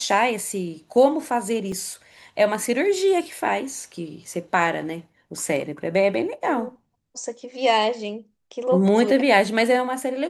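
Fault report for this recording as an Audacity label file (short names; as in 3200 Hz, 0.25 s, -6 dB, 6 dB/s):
1.720000	1.720000	gap 2.9 ms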